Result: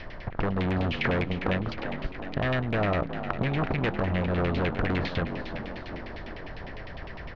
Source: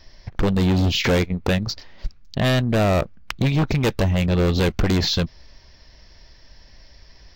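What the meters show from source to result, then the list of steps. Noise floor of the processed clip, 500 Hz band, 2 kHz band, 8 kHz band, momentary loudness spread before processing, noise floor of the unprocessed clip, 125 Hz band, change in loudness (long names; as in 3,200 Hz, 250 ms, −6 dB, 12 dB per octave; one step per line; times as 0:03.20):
−40 dBFS, −6.5 dB, −3.0 dB, below −25 dB, 12 LU, −50 dBFS, −8.5 dB, −8.0 dB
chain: compressor on every frequency bin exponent 0.6
downward compressor, threshold −18 dBFS, peak gain reduction 5.5 dB
echo with shifted repeats 367 ms, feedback 63%, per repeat +48 Hz, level −10 dB
auto-filter low-pass saw down 9.9 Hz 930–2,700 Hz
level −7 dB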